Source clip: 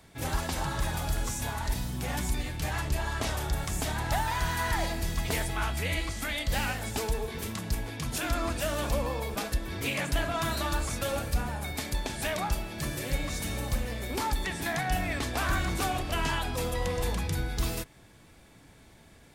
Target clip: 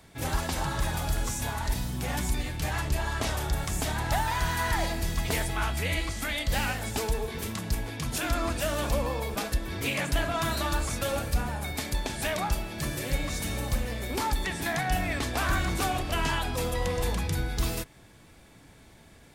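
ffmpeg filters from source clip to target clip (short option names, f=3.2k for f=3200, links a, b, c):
-af "volume=1.5dB"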